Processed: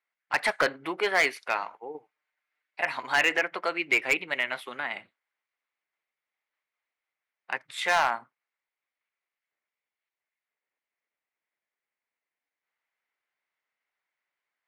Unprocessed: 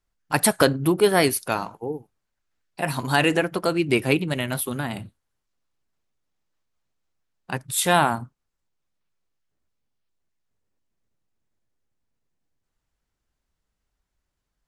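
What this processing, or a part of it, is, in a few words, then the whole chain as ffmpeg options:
megaphone: -filter_complex "[0:a]highpass=670,lowpass=3200,equalizer=frequency=2100:width_type=o:width=0.45:gain=11,asoftclip=type=hard:threshold=-13.5dB,asettb=1/sr,asplit=3[link_01][link_02][link_03];[link_01]atrim=end=1.944[link_04];[link_02]atrim=start=1.94:end=2.81,asetpts=PTS-STARTPTS,afade=type=in:duration=0.004:curve=qsin,afade=type=out:start_time=0.866:duration=0.004:curve=qsin,aecho=1:1:6.6:0.87,atrim=end_sample=38367[link_05];[link_03]atrim=start=2.806[link_06];[link_04][link_05]acrossfade=duration=0.004:curve1=hsin:curve2=qsin[link_07];[link_07][link_06]acrossfade=duration=0.004:curve1=qsin:curve2=hsin,volume=-2dB"

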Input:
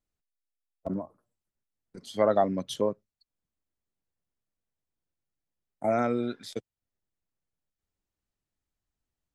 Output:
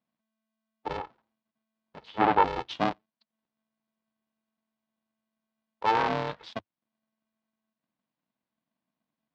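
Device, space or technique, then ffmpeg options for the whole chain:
ring modulator pedal into a guitar cabinet: -filter_complex "[0:a]aeval=exprs='val(0)*sgn(sin(2*PI*220*n/s))':channel_layout=same,highpass=94,equalizer=frequency=100:width_type=q:width=4:gain=-8,equalizer=frequency=400:width_type=q:width=4:gain=-6,equalizer=frequency=940:width_type=q:width=4:gain=6,lowpass=frequency=4300:width=0.5412,lowpass=frequency=4300:width=1.3066,asettb=1/sr,asplit=3[link_01][link_02][link_03];[link_01]atrim=end=0.974[link_04];[link_02]atrim=start=0.97:end=2.44,asetpts=PTS-STARTPTS,afade=type=in:duration=0.004:curve=qsin,afade=type=out:start_time=1.466:duration=0.004:curve=qsin,acrossover=split=3400[link_05][link_06];[link_06]acompressor=threshold=-59dB:ratio=4:attack=1:release=60[link_07];[link_05][link_07]amix=inputs=2:normalize=0[link_08];[link_03]atrim=start=2.436[link_09];[link_04][link_08]acrossfade=duration=0.004:curve1=hsin:curve2=qsin[link_10];[link_10][link_09]acrossfade=duration=0.004:curve1=qsin:curve2=hsin"

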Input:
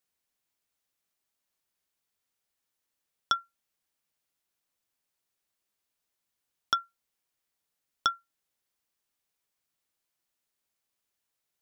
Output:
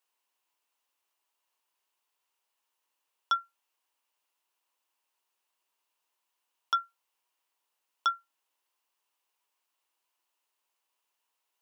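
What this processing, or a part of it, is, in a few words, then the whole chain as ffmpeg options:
laptop speaker: -af "highpass=frequency=300:width=0.5412,highpass=frequency=300:width=1.3066,equalizer=frequency=970:width_type=o:width=0.53:gain=12,equalizer=frequency=2800:width_type=o:width=0.31:gain=7.5,alimiter=limit=-15.5dB:level=0:latency=1:release=18"

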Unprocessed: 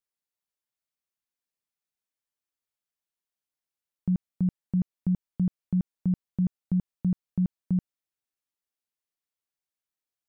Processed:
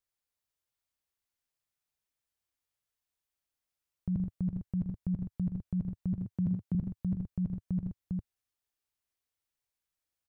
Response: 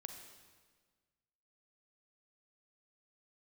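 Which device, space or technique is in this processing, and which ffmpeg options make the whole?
car stereo with a boomy subwoofer: -filter_complex "[0:a]asettb=1/sr,asplit=3[link_01][link_02][link_03];[link_01]atrim=end=6.134[link_04];[link_02]atrim=start=6.13:end=6.75,asetpts=PTS-STARTPTS,afade=type=in:duration=0.004:curve=qsin,afade=type=out:start_time=0.616:duration=0.004:curve=qsin,highpass=frequency=96:width=0.5412,highpass=frequency=96:width=1.3066[link_05];[link_03]atrim=start=6.746[link_06];[link_04][link_05]acrossfade=duration=0.004:curve1=hsin:curve2=qsin[link_07];[link_07][link_06]acrossfade=duration=0.004:curve1=qsin:curve2=hsin,lowshelf=frequency=130:width_type=q:width=1.5:gain=6.5,aecho=1:1:80|97|123|402:0.422|0.133|0.299|0.398,alimiter=limit=-23.5dB:level=0:latency=1:release=250"

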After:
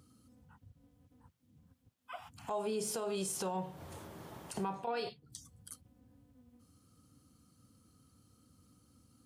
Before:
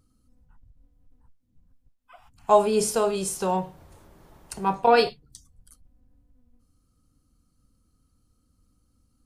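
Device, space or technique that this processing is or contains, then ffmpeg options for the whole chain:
broadcast voice chain: -af "highpass=frequency=86:width=0.5412,highpass=frequency=86:width=1.3066,deesser=0.45,acompressor=threshold=-37dB:ratio=4,equalizer=frequency=3200:width_type=o:width=0.28:gain=3,alimiter=level_in=9.5dB:limit=-24dB:level=0:latency=1:release=71,volume=-9.5dB,volume=5dB"

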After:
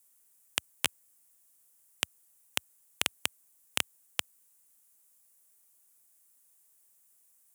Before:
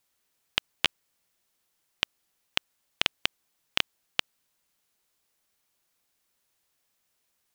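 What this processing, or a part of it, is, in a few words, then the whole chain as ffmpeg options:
budget condenser microphone: -af "highpass=frequency=79:width=0.5412,highpass=frequency=79:width=1.3066,highshelf=frequency=6200:width_type=q:width=1.5:gain=13.5,volume=-3dB"

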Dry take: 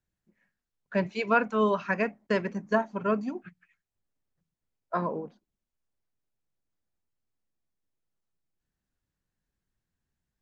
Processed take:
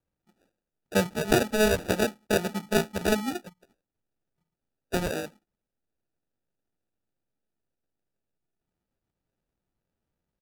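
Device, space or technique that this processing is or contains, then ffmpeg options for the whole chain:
crushed at another speed: -af "asetrate=55125,aresample=44100,acrusher=samples=33:mix=1:aa=0.000001,asetrate=35280,aresample=44100,lowshelf=frequency=120:gain=-5.5,volume=3dB"

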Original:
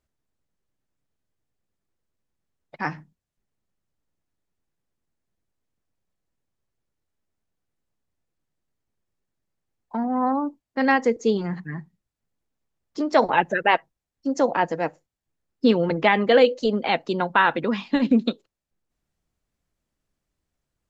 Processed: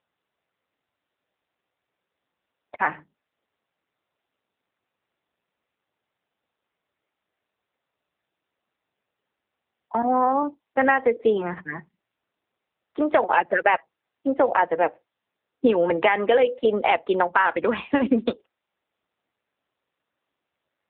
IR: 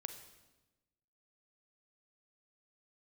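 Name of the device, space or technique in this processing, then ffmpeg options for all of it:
voicemail: -filter_complex "[0:a]asettb=1/sr,asplit=3[link_01][link_02][link_03];[link_01]atrim=end=10.024[link_04];[link_02]atrim=start=10.02:end=10.43,asetpts=PTS-STARTPTS,afade=type=in:duration=0.004:curve=qsin,afade=type=out:start_time=0.406:duration=0.004:curve=qsin,adynamicequalizer=threshold=0.0224:dfrequency=440:dqfactor=0.81:tfrequency=440:tqfactor=0.81:attack=5:release=100:ratio=0.375:range=2:mode=boostabove:tftype=bell[link_05];[link_03]atrim=start=10.426[link_06];[link_04][link_05]acrossfade=duration=0.004:curve1=hsin:curve2=qsin[link_07];[link_07][link_06]acrossfade=duration=0.004:curve1=qsin:curve2=hsin,highpass=410,lowpass=2900,acompressor=threshold=-23dB:ratio=6,volume=8.5dB" -ar 8000 -c:a libopencore_amrnb -b:a 7400

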